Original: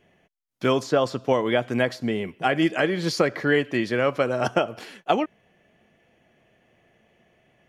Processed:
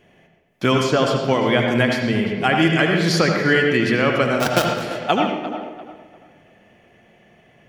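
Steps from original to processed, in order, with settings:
0:04.40–0:04.82: gap after every zero crossing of 0.14 ms
tape delay 346 ms, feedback 29%, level −13 dB, low-pass 3,700 Hz
on a send at −2 dB: convolution reverb RT60 0.85 s, pre-delay 70 ms
on the sum: dynamic equaliser 550 Hz, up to −6 dB, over −31 dBFS, Q 0.74
level +6.5 dB

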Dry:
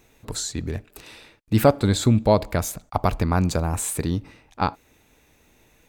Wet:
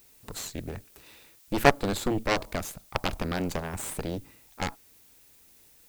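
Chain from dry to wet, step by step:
harmonic generator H 3 −7 dB, 8 −21 dB, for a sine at −3.5 dBFS
background noise blue −58 dBFS

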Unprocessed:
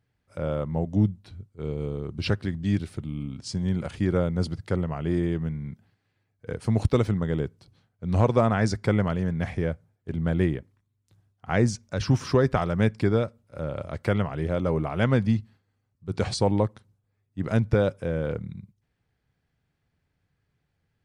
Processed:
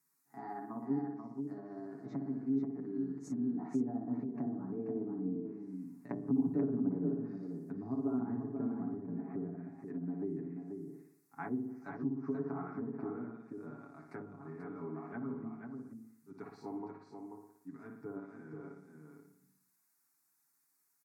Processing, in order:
pitch glide at a constant tempo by +4.5 semitones ending unshifted
source passing by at 0:06.17, 23 m/s, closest 21 metres
background noise blue −75 dBFS
tilt shelving filter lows +7.5 dB, about 870 Hz
flutter between parallel walls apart 10 metres, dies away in 0.67 s
downward compressor 3 to 1, threshold −29 dBFS, peak gain reduction 12.5 dB
phaser with its sweep stopped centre 1,300 Hz, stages 4
treble cut that deepens with the level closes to 480 Hz, closed at −32 dBFS
high-pass filter 250 Hz 24 dB per octave
comb filter 7.2 ms, depth 80%
single-tap delay 485 ms −6 dB
level +4.5 dB

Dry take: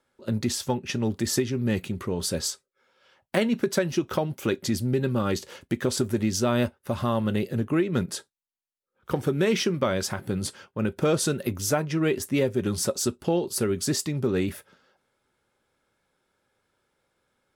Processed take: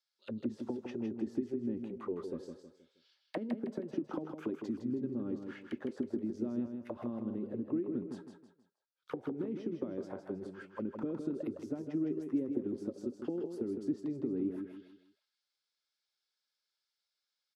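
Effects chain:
downward compressor 12 to 1, threshold −25 dBFS, peak gain reduction 8.5 dB
envelope filter 280–4,800 Hz, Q 3.9, down, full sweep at −25.5 dBFS
on a send: repeating echo 159 ms, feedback 36%, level −6.5 dB

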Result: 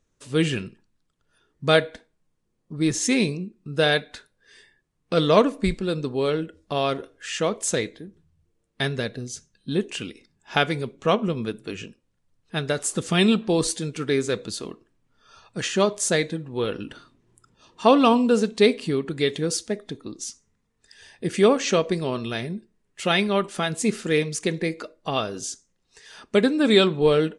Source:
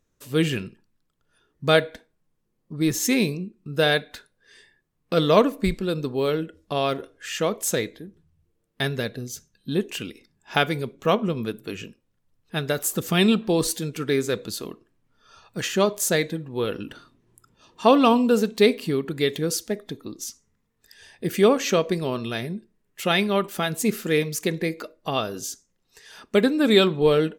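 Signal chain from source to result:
Ogg Vorbis 48 kbit/s 22,050 Hz

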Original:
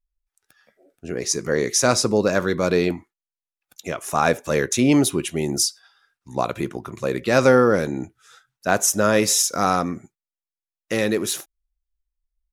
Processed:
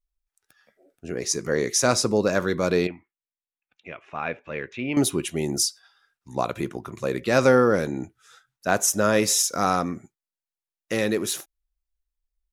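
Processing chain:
0:02.87–0:04.97: transistor ladder low-pass 2,900 Hz, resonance 55%
level −2.5 dB

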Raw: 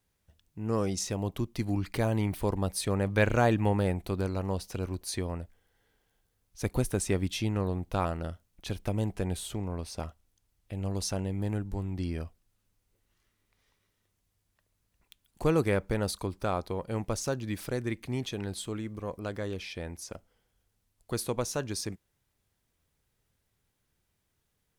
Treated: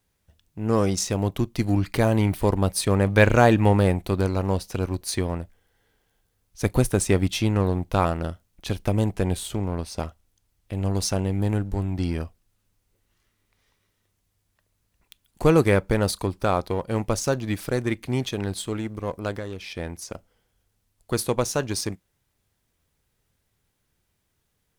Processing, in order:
convolution reverb, pre-delay 11 ms, DRR 23 dB
in parallel at −3 dB: dead-zone distortion −38.5 dBFS
0:19.36–0:19.79: on the sum: downward compressor 4 to 1, threshold −34 dBFS, peak gain reduction 6.5 dB
level +4 dB

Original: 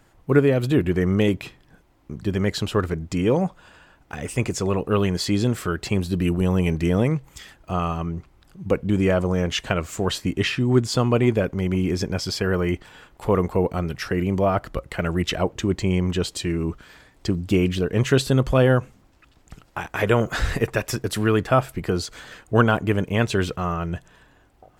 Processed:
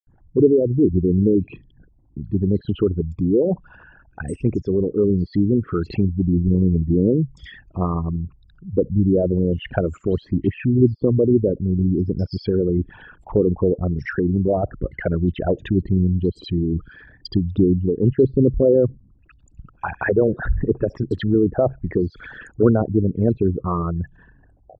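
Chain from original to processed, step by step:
spectral envelope exaggerated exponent 3
multiband delay without the direct sound highs, lows 70 ms, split 4,200 Hz
treble cut that deepens with the level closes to 560 Hz, closed at −18 dBFS
level +3.5 dB

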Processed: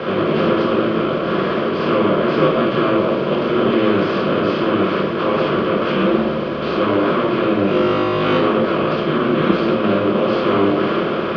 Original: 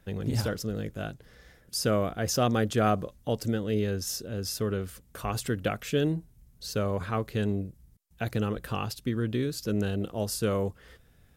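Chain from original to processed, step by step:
compressor on every frequency bin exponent 0.2
brickwall limiter −11.5 dBFS, peak gain reduction 7 dB
0:07.65–0:08.38: flutter between parallel walls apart 3.4 metres, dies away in 1.1 s
rectangular room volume 270 cubic metres, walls mixed, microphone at 2.4 metres
single-sideband voice off tune −94 Hz 300–3,400 Hz

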